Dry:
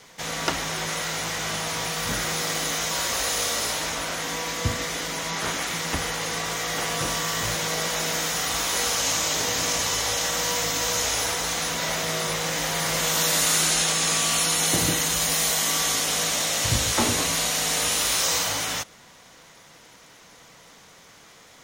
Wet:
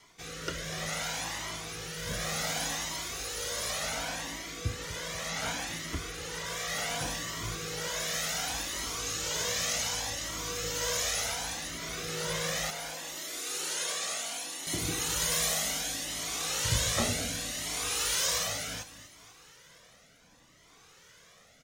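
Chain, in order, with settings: 12.7–14.67 ladder high-pass 230 Hz, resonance 20%; feedback echo 0.244 s, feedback 48%, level -12.5 dB; rotary speaker horn 0.7 Hz; cascading flanger rising 0.68 Hz; gain -1.5 dB

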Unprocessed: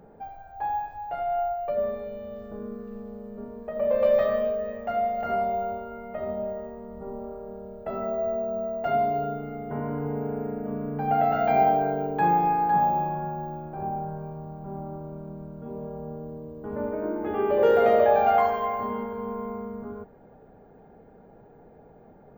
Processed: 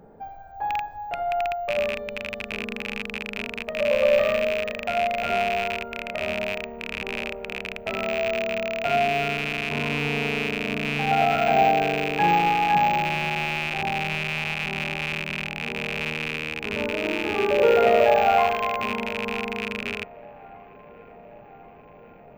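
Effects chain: rattling part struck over -42 dBFS, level -17 dBFS; band-limited delay 1.083 s, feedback 69%, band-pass 950 Hz, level -23 dB; gain +1.5 dB

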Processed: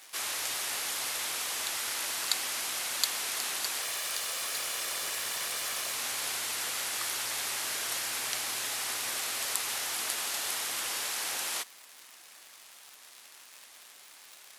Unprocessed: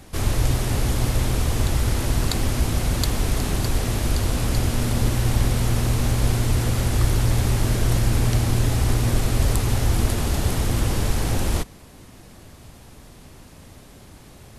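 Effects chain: 3.82–5.94 minimum comb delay 1.7 ms; crackle 170/s -36 dBFS; Bessel high-pass 1600 Hz, order 2

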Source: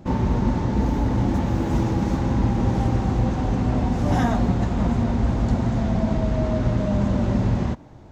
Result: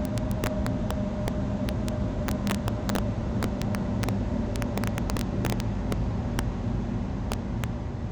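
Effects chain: Paulstretch 8.7×, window 1.00 s, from 6.82; wrapped overs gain 11.5 dB; gain -7 dB

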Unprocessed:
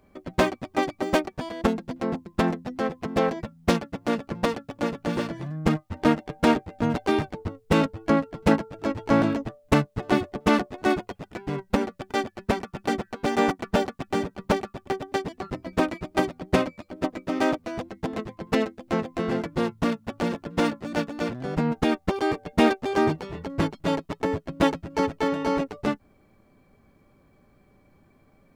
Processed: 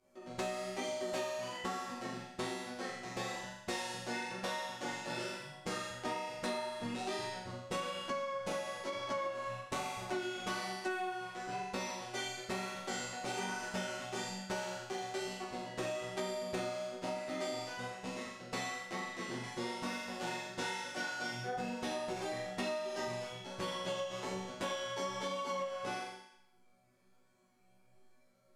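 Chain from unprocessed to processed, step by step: LPF 9400 Hz 12 dB/oct; tone controls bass -6 dB, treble +4 dB; reverb removal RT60 0.94 s; high shelf 4800 Hz +8.5 dB; resonator bank B2 fifth, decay 0.84 s; in parallel at -7 dB: hard clip -37 dBFS, distortion -10 dB; on the sum: chorus 1.1 Hz, delay 19.5 ms, depth 6 ms; on a send: flutter echo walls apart 7.2 m, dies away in 0.67 s; on the sum: compressor 10:1, threshold -44 dBFS, peak gain reduction 13 dB; ending taper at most 110 dB/s; gain +9.5 dB

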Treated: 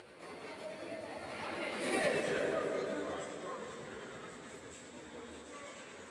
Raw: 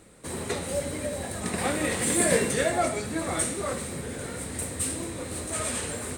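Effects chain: Doppler pass-by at 2.17, 34 m/s, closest 2.4 m; granular stretch 0.52×, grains 0.109 s; HPF 500 Hz 6 dB/oct; in parallel at -8 dB: bit-crush 5-bit; on the sum: plain phase-vocoder stretch 1.9×; upward compressor, threshold -45 dBFS; LPF 3900 Hz 12 dB/oct; tape echo 0.168 s, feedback 68%, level -7 dB, low-pass 1200 Hz; compressor 8:1, threshold -42 dBFS, peak gain reduction 18 dB; echo with dull and thin repeats by turns 0.118 s, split 810 Hz, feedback 75%, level -9 dB; gain +11 dB

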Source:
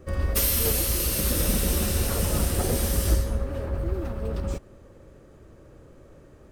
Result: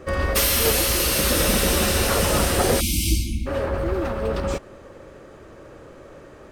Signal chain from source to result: overdrive pedal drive 13 dB, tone 3500 Hz, clips at -9.5 dBFS; spectral delete 2.8–3.46, 360–2100 Hz; gain +5.5 dB

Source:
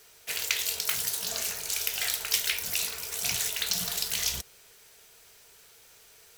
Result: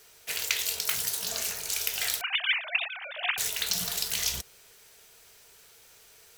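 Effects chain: 2.21–3.38 sine-wave speech

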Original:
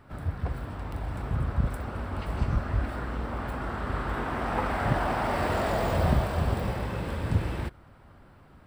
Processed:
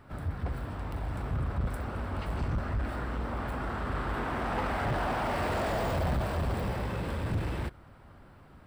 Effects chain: soft clip -25 dBFS, distortion -11 dB

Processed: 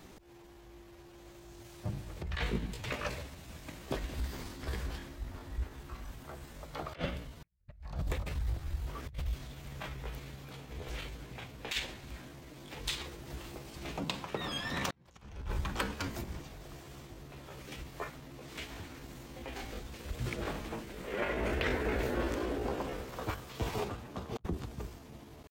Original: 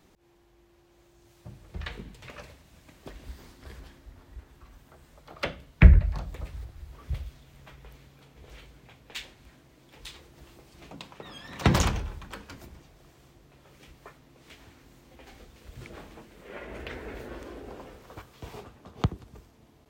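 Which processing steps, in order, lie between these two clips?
negative-ratio compressor -38 dBFS, ratio -0.5; tempo 0.78×

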